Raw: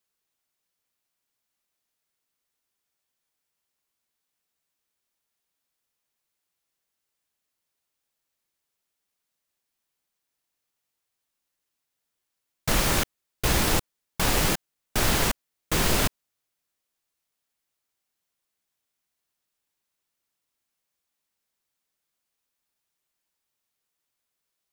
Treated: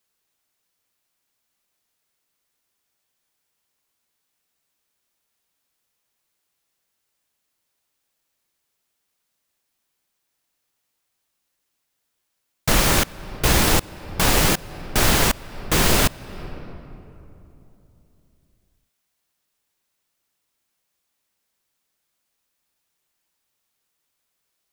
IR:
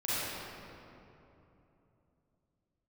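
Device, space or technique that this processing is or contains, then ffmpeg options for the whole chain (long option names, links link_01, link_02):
ducked reverb: -filter_complex "[0:a]asplit=3[link_01][link_02][link_03];[1:a]atrim=start_sample=2205[link_04];[link_02][link_04]afir=irnorm=-1:irlink=0[link_05];[link_03]apad=whole_len=1090325[link_06];[link_05][link_06]sidechaincompress=threshold=-33dB:ratio=6:attack=16:release=348,volume=-19dB[link_07];[link_01][link_07]amix=inputs=2:normalize=0,volume=5.5dB"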